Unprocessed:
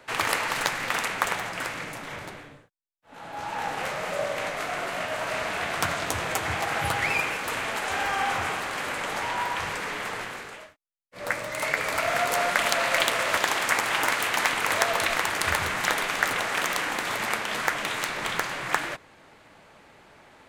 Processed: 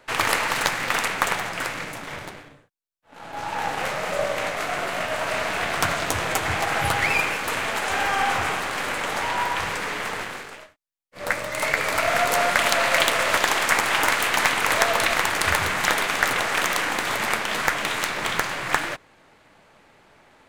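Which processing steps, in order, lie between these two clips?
half-wave gain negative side -3 dB; sample leveller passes 1; gain +1.5 dB

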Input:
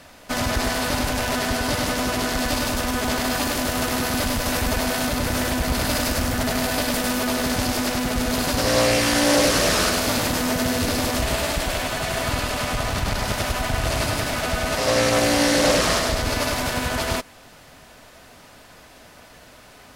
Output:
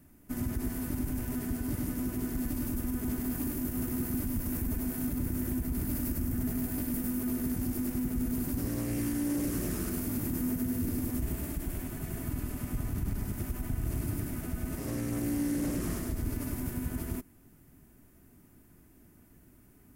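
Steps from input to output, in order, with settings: EQ curve 360 Hz 0 dB, 510 Hz -19 dB, 2100 Hz -17 dB, 4000 Hz -26 dB, 15000 Hz +3 dB; limiter -17.5 dBFS, peak gain reduction 5.5 dB; gain -5.5 dB

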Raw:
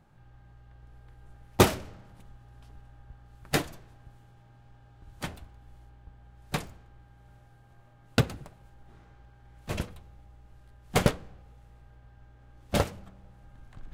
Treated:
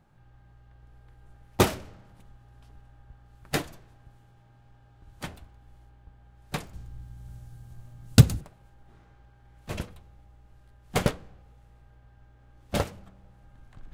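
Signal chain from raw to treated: 6.73–8.41 tone controls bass +14 dB, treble +14 dB; gain -1.5 dB

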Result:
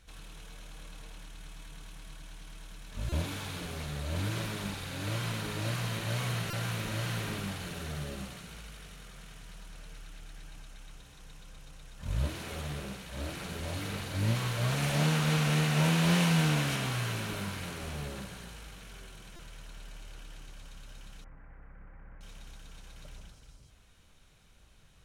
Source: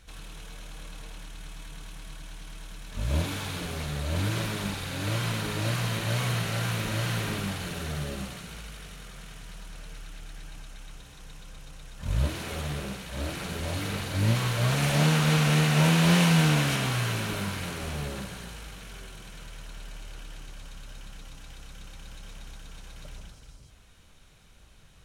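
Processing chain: 21.24–22.21 elliptic low-pass 2000 Hz, stop band 50 dB; stuck buffer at 3.09/6.5/19.36, samples 128, times 10; gain -5 dB

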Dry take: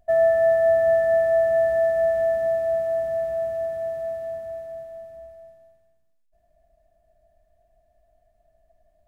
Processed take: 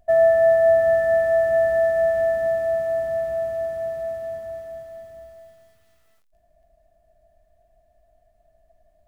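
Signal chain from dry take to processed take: lo-fi delay 0.72 s, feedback 35%, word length 9-bit, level -14 dB; gain +2.5 dB

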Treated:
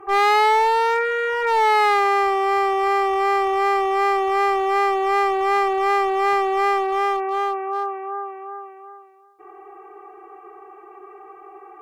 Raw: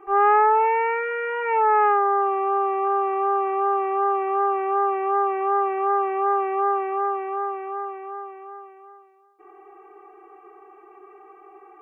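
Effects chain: fifteen-band EQ 100 Hz +10 dB, 250 Hz -8 dB, 2500 Hz -3 dB; one-sided clip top -26 dBFS, bottom -17 dBFS; gain +6 dB

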